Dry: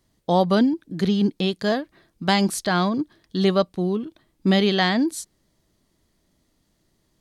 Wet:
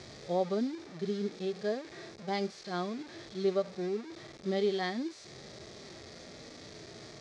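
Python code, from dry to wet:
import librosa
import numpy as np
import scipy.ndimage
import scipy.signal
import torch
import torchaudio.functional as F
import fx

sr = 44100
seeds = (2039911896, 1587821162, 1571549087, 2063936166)

y = fx.delta_mod(x, sr, bps=64000, step_db=-24.5)
y = fx.hpss(y, sr, part='percussive', gain_db=-16)
y = fx.cabinet(y, sr, low_hz=130.0, low_slope=12, high_hz=5600.0, hz=(190.0, 290.0, 420.0, 970.0, 1500.0, 2900.0), db=(-8, -9, 5, -9, -5, -10))
y = y * librosa.db_to_amplitude(-8.5)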